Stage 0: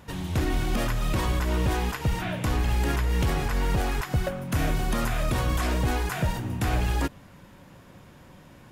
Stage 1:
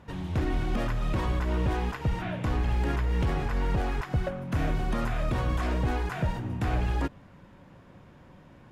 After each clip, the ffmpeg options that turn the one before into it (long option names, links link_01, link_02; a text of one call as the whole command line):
ffmpeg -i in.wav -af "aemphasis=mode=reproduction:type=75kf,volume=-2dB" out.wav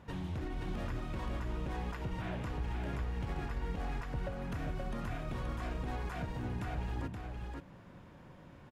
ffmpeg -i in.wav -filter_complex "[0:a]alimiter=level_in=3.5dB:limit=-24dB:level=0:latency=1:release=253,volume=-3.5dB,asplit=2[link_01][link_02];[link_02]aecho=0:1:526:0.631[link_03];[link_01][link_03]amix=inputs=2:normalize=0,volume=-3.5dB" out.wav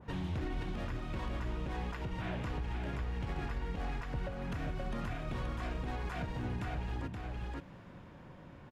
ffmpeg -i in.wav -af "highshelf=frequency=6600:gain=-9.5,alimiter=level_in=6.5dB:limit=-24dB:level=0:latency=1:release=313,volume=-6.5dB,adynamicequalizer=threshold=0.00112:dfrequency=1900:dqfactor=0.7:tfrequency=1900:tqfactor=0.7:attack=5:release=100:ratio=0.375:range=2:mode=boostabove:tftype=highshelf,volume=2dB" out.wav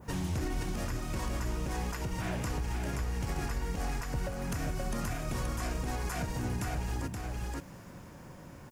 ffmpeg -i in.wav -af "aexciter=amount=2.9:drive=9.7:freq=5100,volume=3.5dB" out.wav